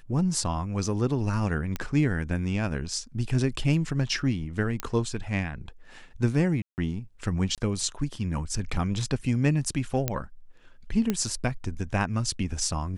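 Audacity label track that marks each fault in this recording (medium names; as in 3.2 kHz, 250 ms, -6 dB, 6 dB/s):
1.760000	1.760000	pop -16 dBFS
4.800000	4.800000	pop -15 dBFS
6.620000	6.780000	dropout 159 ms
7.550000	7.580000	dropout 27 ms
10.080000	10.080000	pop -10 dBFS
11.100000	11.100000	pop -12 dBFS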